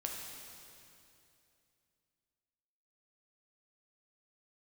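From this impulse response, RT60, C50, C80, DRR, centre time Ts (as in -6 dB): 2.7 s, 1.5 dB, 2.5 dB, -0.5 dB, 103 ms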